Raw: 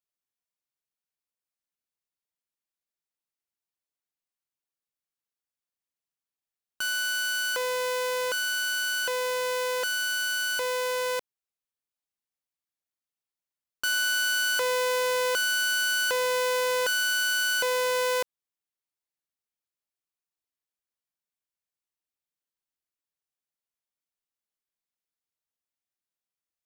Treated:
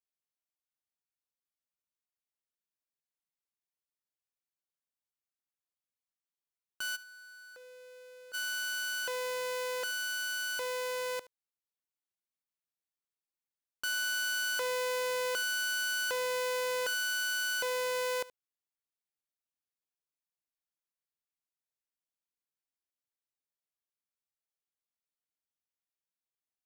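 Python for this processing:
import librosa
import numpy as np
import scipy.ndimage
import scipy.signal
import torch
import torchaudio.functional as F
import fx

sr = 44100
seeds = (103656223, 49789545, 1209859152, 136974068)

p1 = fx.tube_stage(x, sr, drive_db=45.0, bias=0.65, at=(6.95, 8.33), fade=0.02)
p2 = p1 + fx.echo_single(p1, sr, ms=74, db=-19.5, dry=0)
y = F.gain(torch.from_numpy(p2), -7.0).numpy()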